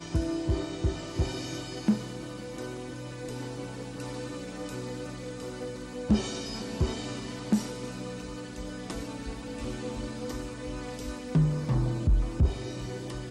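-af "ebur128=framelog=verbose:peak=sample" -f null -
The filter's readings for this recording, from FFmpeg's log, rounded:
Integrated loudness:
  I:         -33.0 LUFS
  Threshold: -43.0 LUFS
Loudness range:
  LRA:         7.7 LU
  Threshold: -53.7 LUFS
  LRA low:   -38.1 LUFS
  LRA high:  -30.4 LUFS
Sample peak:
  Peak:      -13.3 dBFS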